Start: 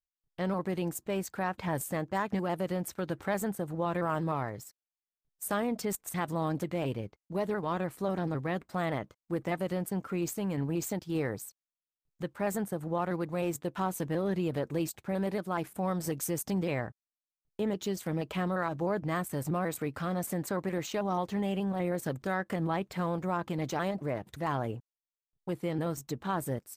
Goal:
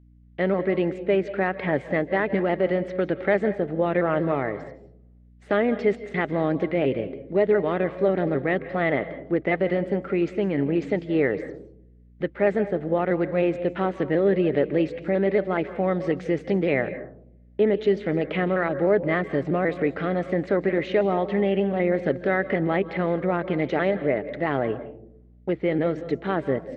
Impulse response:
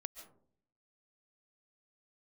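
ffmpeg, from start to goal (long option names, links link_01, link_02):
-filter_complex "[0:a]highpass=150,equalizer=frequency=280:width_type=q:width=4:gain=4,equalizer=frequency=410:width_type=q:width=4:gain=8,equalizer=frequency=600:width_type=q:width=4:gain=5,equalizer=frequency=1000:width_type=q:width=4:gain=-9,equalizer=frequency=2000:width_type=q:width=4:gain=9,lowpass=frequency=3400:width=0.5412,lowpass=frequency=3400:width=1.3066,aeval=exprs='val(0)+0.00126*(sin(2*PI*60*n/s)+sin(2*PI*2*60*n/s)/2+sin(2*PI*3*60*n/s)/3+sin(2*PI*4*60*n/s)/4+sin(2*PI*5*60*n/s)/5)':channel_layout=same,asplit=2[link_01][link_02];[1:a]atrim=start_sample=2205,asetrate=37485,aresample=44100[link_03];[link_02][link_03]afir=irnorm=-1:irlink=0,volume=4dB[link_04];[link_01][link_04]amix=inputs=2:normalize=0"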